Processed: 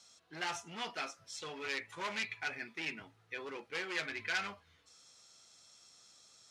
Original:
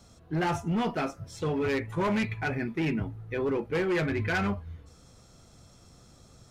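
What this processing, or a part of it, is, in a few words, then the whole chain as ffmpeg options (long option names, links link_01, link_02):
piezo pickup straight into a mixer: -af "lowpass=5200,aderivative,volume=7.5dB"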